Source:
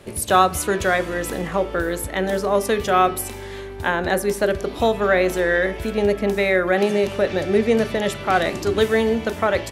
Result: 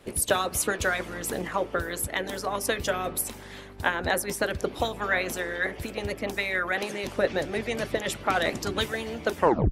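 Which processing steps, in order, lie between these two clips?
tape stop at the end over 0.33 s; harmonic-percussive split harmonic -17 dB

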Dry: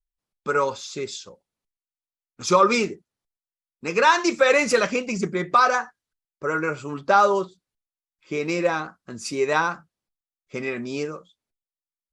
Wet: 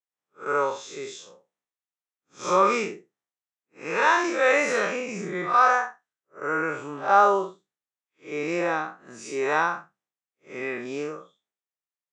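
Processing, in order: time blur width 0.127 s; speaker cabinet 200–8400 Hz, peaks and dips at 240 Hz -5 dB, 760 Hz +4 dB, 1200 Hz +3 dB, 1800 Hz +5 dB, 4600 Hz -10 dB

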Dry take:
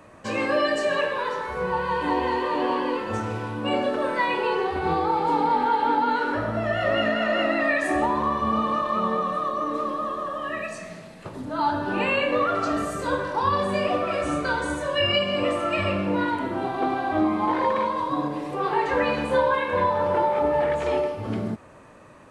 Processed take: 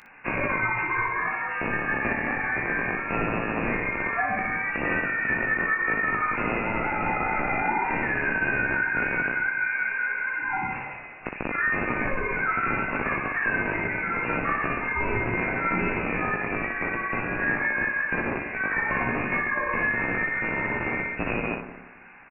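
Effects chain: rattling part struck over -32 dBFS, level -14 dBFS; thin delay 89 ms, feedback 56%, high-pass 1700 Hz, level -10 dB; compressor, threshold -23 dBFS, peak gain reduction 7.5 dB; tilt shelf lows -8 dB, about 1100 Hz; careless resampling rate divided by 8×, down none, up hold; inverted band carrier 2700 Hz; bell 67 Hz -7.5 dB 1.8 oct; early reflections 17 ms -4.5 dB, 60 ms -5 dB

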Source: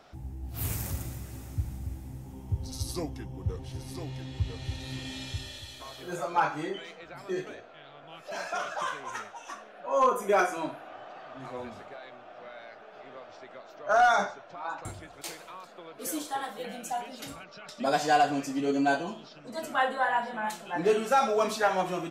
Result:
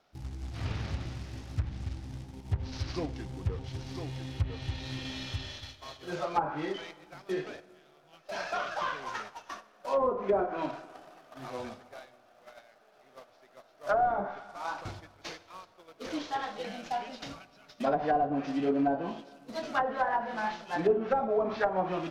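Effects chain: CVSD 32 kbps; gate -43 dBFS, range -13 dB; on a send at -18 dB: reverb RT60 1.7 s, pre-delay 49 ms; on the sum: short-mantissa float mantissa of 2-bit; treble ducked by the level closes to 640 Hz, closed at -21 dBFS

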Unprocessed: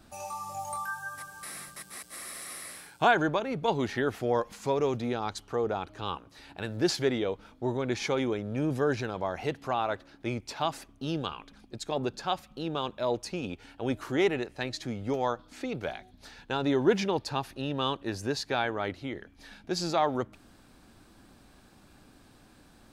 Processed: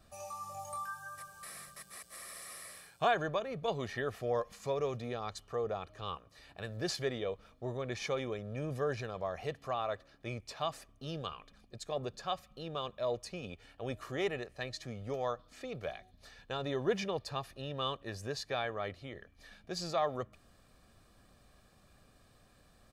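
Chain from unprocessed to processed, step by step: comb 1.7 ms, depth 55%; gain -7.5 dB

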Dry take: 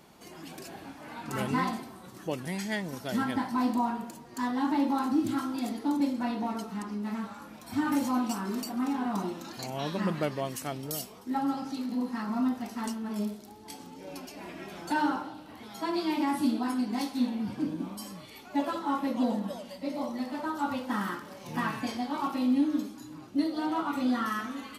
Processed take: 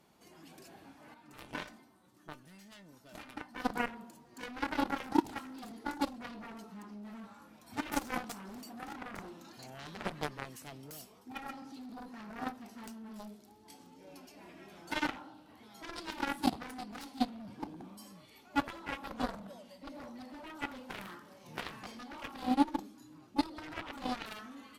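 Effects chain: added harmonics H 3 -8 dB, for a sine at -16 dBFS; 1.14–3.65 resonator 300 Hz, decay 0.16 s, harmonics all, mix 70%; gain +4 dB

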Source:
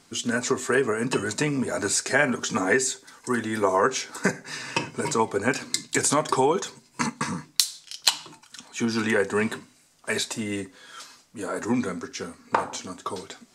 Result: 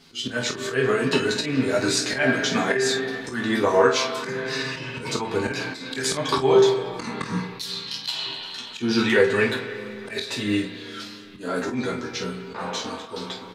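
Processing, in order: ten-band EQ 1000 Hz -4 dB, 4000 Hz +8 dB, 8000 Hz -11 dB; spring tank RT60 2.8 s, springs 33/38 ms, chirp 25 ms, DRR 7.5 dB; chorus voices 4, 0.19 Hz, delay 12 ms, depth 4.7 ms; auto swell 0.146 s; early reflections 23 ms -6.5 dB, 49 ms -9.5 dB; gain +6 dB

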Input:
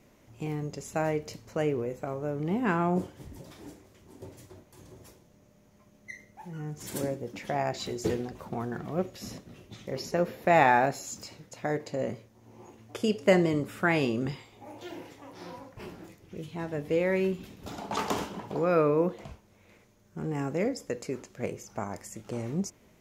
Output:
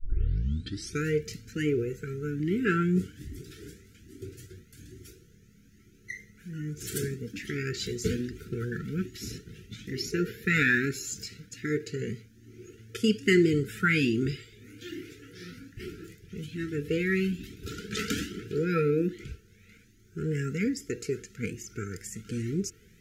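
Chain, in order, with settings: tape start at the beginning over 1.05 s; brick-wall FIR band-stop 480–1300 Hz; cascading flanger rising 1.2 Hz; gain +8 dB

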